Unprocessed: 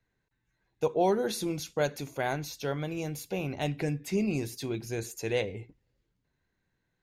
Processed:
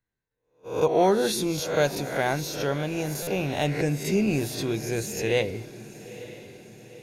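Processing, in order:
peak hold with a rise ahead of every peak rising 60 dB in 0.53 s
noise gate −46 dBFS, range −15 dB
feedback delay with all-pass diffusion 928 ms, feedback 52%, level −16 dB
buffer that repeats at 0:03.22, samples 256, times 8
level +4.5 dB

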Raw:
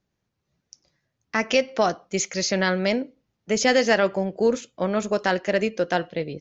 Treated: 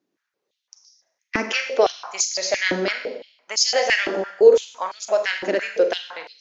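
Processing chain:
four-comb reverb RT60 0.84 s, combs from 33 ms, DRR 4.5 dB
harmonic and percussive parts rebalanced harmonic −4 dB
high-pass on a step sequencer 5.9 Hz 300–4,900 Hz

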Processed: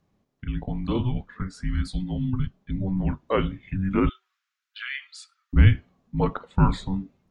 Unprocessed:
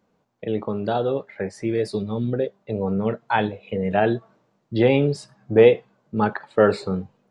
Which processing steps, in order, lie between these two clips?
0:04.09–0:05.53: Chebyshev high-pass filter 1,700 Hz, order 5
frequency shifter −380 Hz
level −2 dB

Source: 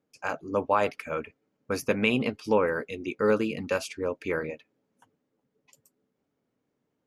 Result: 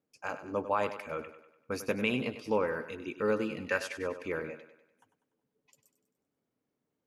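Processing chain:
0:03.63–0:04.21: parametric band 1,800 Hz +12.5 dB 0.65 octaves
feedback echo with a high-pass in the loop 98 ms, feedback 49%, high-pass 170 Hz, level −11.5 dB
level −6 dB

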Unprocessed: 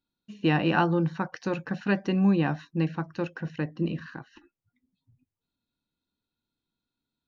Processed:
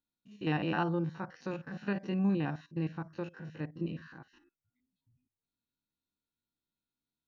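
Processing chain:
spectrum averaged block by block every 50 ms
level −7 dB

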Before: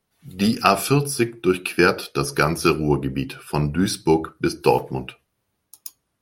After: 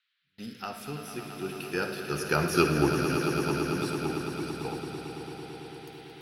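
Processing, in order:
source passing by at 0:02.65, 11 m/s, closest 3.6 metres
noise in a band 1,400–4,100 Hz −53 dBFS
echo that builds up and dies away 111 ms, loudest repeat 5, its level −10.5 dB
noise gate with hold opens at −40 dBFS
on a send at −8 dB: convolution reverb RT60 3.4 s, pre-delay 47 ms
on the sum: level −5.5 dB

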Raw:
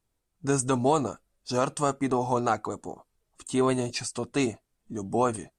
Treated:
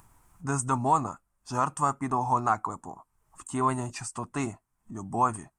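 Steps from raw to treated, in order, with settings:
octave-band graphic EQ 125/500/1,000/4,000/8,000 Hz +3/−11/+12/−12/+3 dB
upward compression, threshold −38 dBFS
level −3 dB

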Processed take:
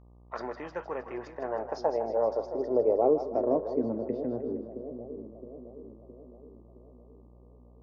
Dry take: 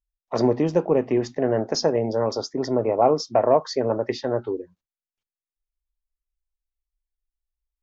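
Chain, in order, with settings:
band-pass filter sweep 1,500 Hz → 230 Hz, 0:00.83–0:03.98
echo with a time of its own for lows and highs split 590 Hz, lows 666 ms, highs 157 ms, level −9 dB
hum with harmonics 60 Hz, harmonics 20, −55 dBFS −7 dB per octave

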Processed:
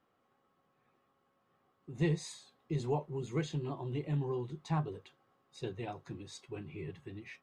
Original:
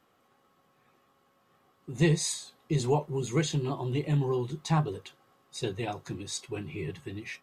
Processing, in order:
low-pass filter 2,500 Hz 6 dB per octave
level −7 dB

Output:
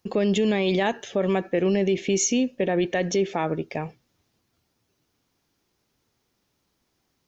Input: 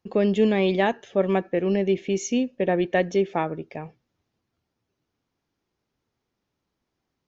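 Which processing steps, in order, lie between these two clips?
high-shelf EQ 4,000 Hz +10 dB
brickwall limiter −19 dBFS, peak gain reduction 10 dB
level +5 dB

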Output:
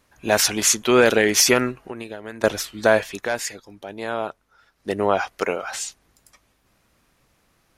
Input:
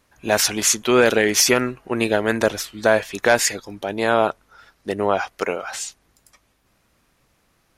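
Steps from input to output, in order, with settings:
0:01.71–0:02.44: downward compressor 8 to 1, threshold −31 dBFS, peak gain reduction 17 dB
0:03.07–0:04.91: duck −9 dB, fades 0.19 s

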